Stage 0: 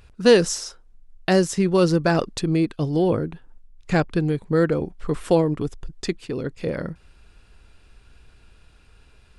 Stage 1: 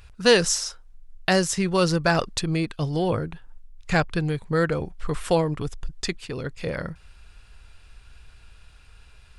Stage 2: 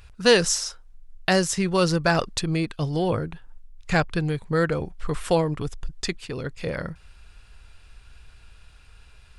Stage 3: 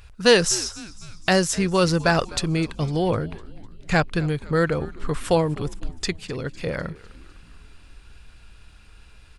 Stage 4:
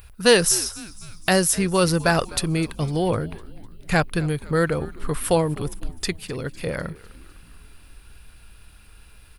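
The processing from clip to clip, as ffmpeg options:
ffmpeg -i in.wav -af "equalizer=frequency=300:width_type=o:width=1.9:gain=-10.5,volume=3.5dB" out.wav
ffmpeg -i in.wav -af anull out.wav
ffmpeg -i in.wav -filter_complex "[0:a]asplit=6[link_01][link_02][link_03][link_04][link_05][link_06];[link_02]adelay=252,afreqshift=-110,volume=-20dB[link_07];[link_03]adelay=504,afreqshift=-220,volume=-24.7dB[link_08];[link_04]adelay=756,afreqshift=-330,volume=-29.5dB[link_09];[link_05]adelay=1008,afreqshift=-440,volume=-34.2dB[link_10];[link_06]adelay=1260,afreqshift=-550,volume=-38.9dB[link_11];[link_01][link_07][link_08][link_09][link_10][link_11]amix=inputs=6:normalize=0,volume=1.5dB" out.wav
ffmpeg -i in.wav -af "aexciter=amount=7.7:drive=4.2:freq=9700" out.wav

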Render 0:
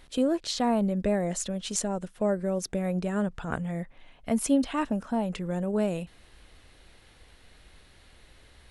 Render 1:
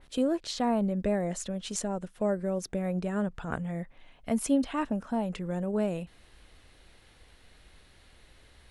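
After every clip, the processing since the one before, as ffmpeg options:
ffmpeg -i in.wav -af "adynamicequalizer=threshold=0.00501:dfrequency=2800:dqfactor=0.7:tfrequency=2800:tqfactor=0.7:attack=5:release=100:ratio=0.375:range=2.5:mode=cutabove:tftype=highshelf,volume=-2dB" out.wav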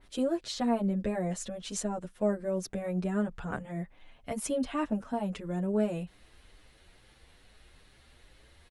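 ffmpeg -i in.wav -filter_complex "[0:a]asplit=2[link_01][link_02];[link_02]adelay=7.9,afreqshift=2.3[link_03];[link_01][link_03]amix=inputs=2:normalize=1,volume=1.5dB" out.wav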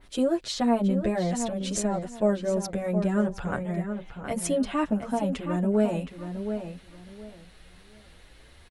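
ffmpeg -i in.wav -filter_complex "[0:a]asplit=2[link_01][link_02];[link_02]adelay=719,lowpass=frequency=3300:poles=1,volume=-8dB,asplit=2[link_03][link_04];[link_04]adelay=719,lowpass=frequency=3300:poles=1,volume=0.23,asplit=2[link_05][link_06];[link_06]adelay=719,lowpass=frequency=3300:poles=1,volume=0.23[link_07];[link_01][link_03][link_05][link_07]amix=inputs=4:normalize=0,volume=5dB" out.wav

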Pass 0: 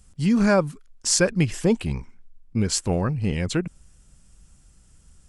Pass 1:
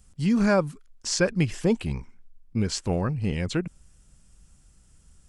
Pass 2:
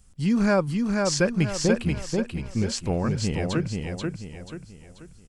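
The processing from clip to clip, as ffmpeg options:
ffmpeg -i in.wav -filter_complex "[0:a]acrossover=split=6600[link_01][link_02];[link_02]acompressor=threshold=-44dB:ratio=4:attack=1:release=60[link_03];[link_01][link_03]amix=inputs=2:normalize=0,volume=-2.5dB" out.wav
ffmpeg -i in.wav -af "aecho=1:1:485|970|1455|1940|2425:0.668|0.254|0.0965|0.0367|0.0139" out.wav

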